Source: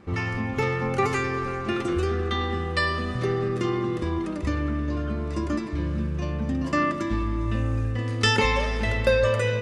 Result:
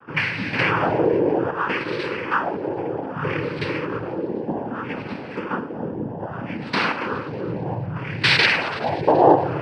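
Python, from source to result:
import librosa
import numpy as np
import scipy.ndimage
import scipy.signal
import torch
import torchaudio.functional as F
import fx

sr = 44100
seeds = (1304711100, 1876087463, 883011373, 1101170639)

y = fx.filter_lfo_lowpass(x, sr, shape='sine', hz=0.63, low_hz=440.0, high_hz=2600.0, q=5.9)
y = fx.rev_schroeder(y, sr, rt60_s=2.6, comb_ms=29, drr_db=13.0)
y = fx.noise_vocoder(y, sr, seeds[0], bands=8)
y = fx.env_flatten(y, sr, amount_pct=50, at=(0.53, 1.51))
y = y * 10.0 ** (-1.5 / 20.0)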